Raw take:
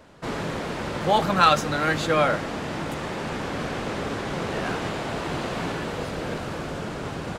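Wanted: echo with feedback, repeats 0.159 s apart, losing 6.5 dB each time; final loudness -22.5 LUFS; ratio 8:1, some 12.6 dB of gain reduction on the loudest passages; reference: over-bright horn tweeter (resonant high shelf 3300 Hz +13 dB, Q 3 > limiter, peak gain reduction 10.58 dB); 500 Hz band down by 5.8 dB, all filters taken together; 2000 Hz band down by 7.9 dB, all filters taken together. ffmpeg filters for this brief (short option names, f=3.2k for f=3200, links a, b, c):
-af "equalizer=f=500:t=o:g=-6.5,equalizer=f=2k:t=o:g=-5,acompressor=threshold=-28dB:ratio=8,highshelf=f=3.3k:t=q:w=3:g=13,aecho=1:1:159|318|477|636|795|954:0.473|0.222|0.105|0.0491|0.0231|0.0109,volume=4.5dB,alimiter=limit=-14dB:level=0:latency=1"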